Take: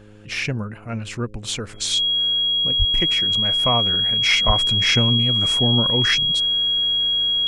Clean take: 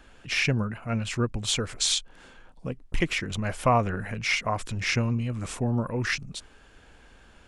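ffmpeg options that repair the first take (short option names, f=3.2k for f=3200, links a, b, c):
-filter_complex "[0:a]bandreject=f=104.9:t=h:w=4,bandreject=f=209.8:t=h:w=4,bandreject=f=314.7:t=h:w=4,bandreject=f=419.6:t=h:w=4,bandreject=f=524.5:t=h:w=4,bandreject=f=3.3k:w=30,asplit=3[a][b][c];[a]afade=t=out:st=2.78:d=0.02[d];[b]highpass=f=140:w=0.5412,highpass=f=140:w=1.3066,afade=t=in:st=2.78:d=0.02,afade=t=out:st=2.9:d=0.02[e];[c]afade=t=in:st=2.9:d=0.02[f];[d][e][f]amix=inputs=3:normalize=0,asplit=3[g][h][i];[g]afade=t=out:st=4.46:d=0.02[j];[h]highpass=f=140:w=0.5412,highpass=f=140:w=1.3066,afade=t=in:st=4.46:d=0.02,afade=t=out:st=4.58:d=0.02[k];[i]afade=t=in:st=4.58:d=0.02[l];[j][k][l]amix=inputs=3:normalize=0,asetnsamples=n=441:p=0,asendcmd='4.22 volume volume -6dB',volume=0dB"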